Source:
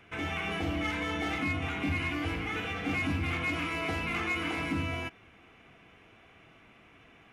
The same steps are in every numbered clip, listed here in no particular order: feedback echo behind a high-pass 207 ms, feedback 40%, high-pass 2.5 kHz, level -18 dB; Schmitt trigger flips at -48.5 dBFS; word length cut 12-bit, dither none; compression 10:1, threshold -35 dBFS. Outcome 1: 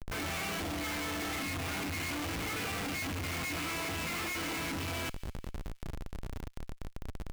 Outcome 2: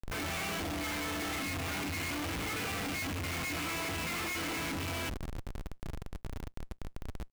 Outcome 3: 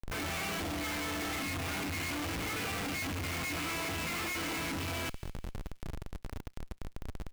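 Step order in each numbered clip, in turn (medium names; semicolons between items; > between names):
word length cut > Schmitt trigger > feedback echo behind a high-pass > compression; feedback echo behind a high-pass > Schmitt trigger > word length cut > compression; Schmitt trigger > word length cut > compression > feedback echo behind a high-pass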